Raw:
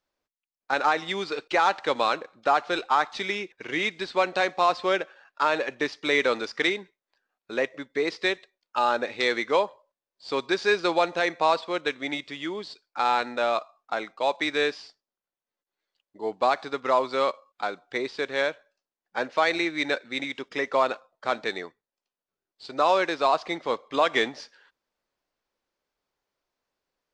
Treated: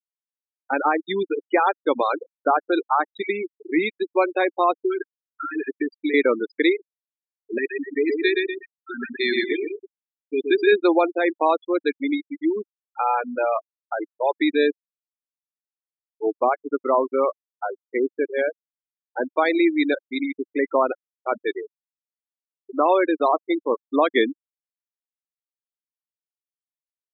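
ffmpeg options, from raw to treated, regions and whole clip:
-filter_complex "[0:a]asettb=1/sr,asplit=3[s0][s1][s2];[s0]atrim=end=4.774[s3];[s1]atrim=start=4.77:end=6.14,asetpts=PTS-STARTPTS,afade=t=in:d=0.004:c=qsin,afade=t=out:st=1.366:d=0.004:c=qsin,asuperstop=centerf=760:order=20:qfactor=0.88,aecho=1:1:7.4:0.5,atrim=end_sample=60417,acompressor=threshold=0.0501:ratio=10:attack=3.2:release=140:knee=1:detection=peak[s4];[s2]atrim=start=6.136[s5];[s3][s4]acrossfade=d=0.004:c1=hsin:c2=qsin[s6];[s6][s5]acrossfade=d=0.004:c1=qsin:c2=hsin,asettb=1/sr,asplit=3[s7][s8][s9];[s7]atrim=end=7.584[s10];[s8]atrim=start=7.58:end=10.72,asetpts=PTS-STARTPTS,afade=t=in:d=0.004:c=qsin,afade=t=out:st=3.136:d=0.004:c=qsin,asuperstop=centerf=770:order=20:qfactor=0.81,aecho=1:1:1.7:0.36,atrim=end_sample=138474,aecho=1:1:121|242|363|484|605|726|847:0.708|0.361|0.184|0.0939|0.0479|0.0244|0.0125,atrim=end_sample=138474[s11];[s9]atrim=start=10.716[s12];[s10][s11]acrossfade=d=0.004:c1=hsin:c2=qsin[s13];[s13][s12]acrossfade=d=0.004:c1=qsin:c2=hsin,asettb=1/sr,asplit=3[s14][s15][s16];[s14]atrim=end=16.334[s17];[s15]atrim=start=16.33:end=19.24,asetpts=PTS-STARTPTS,afade=t=in:d=0.004:c=qsin,afade=t=out:st=2.906:d=0.004:c=qsin,highpass=f=81:w=0.5412,highpass=f=81:w=1.3066,highshelf=f=2800:g=-3[s18];[s16]atrim=start=19.236[s19];[s17][s18]acrossfade=d=0.004:c1=hsin:c2=qsin[s20];[s20][s19]acrossfade=d=0.004:c1=qsin:c2=hsin,afftfilt=real='re*gte(hypot(re,im),0.1)':imag='im*gte(hypot(re,im),0.1)':win_size=1024:overlap=0.75,equalizer=f=310:t=o:w=0.99:g=11.5,volume=1.12"

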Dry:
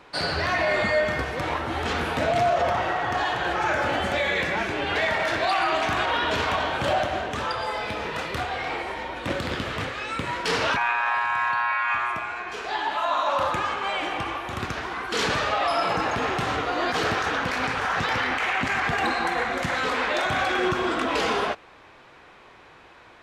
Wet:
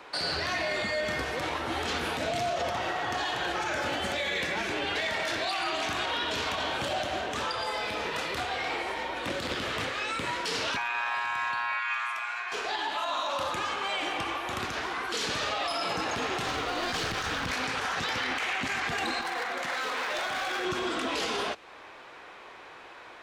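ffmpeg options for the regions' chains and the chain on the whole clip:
-filter_complex "[0:a]asettb=1/sr,asplit=3[s0][s1][s2];[s0]atrim=end=11.794[s3];[s1]atrim=start=11.79:end=12.52,asetpts=PTS-STARTPTS,afade=t=in:d=0.004:c=qsin,afade=t=out:st=0.726:d=0.004:c=qsin,aeval=exprs='val(0)+0.0158*(sin(2*PI*50*n/s)+sin(2*PI*2*50*n/s)/2+sin(2*PI*3*50*n/s)/3+sin(2*PI*4*50*n/s)/4+sin(2*PI*5*50*n/s)/5)':c=same,highpass=1100[s4];[s2]atrim=start=12.516[s5];[s3][s4]acrossfade=d=0.004:c1=hsin:c2=qsin[s6];[s6][s5]acrossfade=d=0.004:c1=qsin:c2=hsin,asettb=1/sr,asplit=3[s7][s8][s9];[s7]atrim=end=16.434[s10];[s8]atrim=start=16.43:end=17.53,asetpts=PTS-STARTPTS,afade=t=in:d=0.004:c=qsin,afade=t=out:st=1.096:d=0.004:c=qsin,lowpass=8900,asubboost=boost=10.5:cutoff=180,aeval=exprs='clip(val(0),-1,0.0562)':c=same[s11];[s9]atrim=start=17.526[s12];[s10][s11]acrossfade=d=0.004:c1=hsin:c2=qsin[s13];[s13][s12]acrossfade=d=0.004:c1=qsin:c2=hsin,asettb=1/sr,asplit=3[s14][s15][s16];[s14]atrim=end=19.214[s17];[s15]atrim=start=19.21:end=20.65,asetpts=PTS-STARTPTS,afade=t=in:d=0.004:c=qsin,afade=t=out:st=1.436:d=0.004:c=qsin,highpass=f=660:p=1,highshelf=f=3000:g=-8.5,volume=17.8,asoftclip=hard,volume=0.0562[s18];[s16]atrim=start=20.646[s19];[s17][s18]acrossfade=d=0.004:c1=hsin:c2=qsin[s20];[s20][s19]acrossfade=d=0.004:c1=qsin:c2=hsin,bass=f=250:g=-11,treble=f=4000:g=0,acrossover=split=310|3000[s21][s22][s23];[s22]acompressor=threshold=0.0158:ratio=3[s24];[s21][s24][s23]amix=inputs=3:normalize=0,alimiter=level_in=1.06:limit=0.0631:level=0:latency=1:release=35,volume=0.944,volume=1.41"

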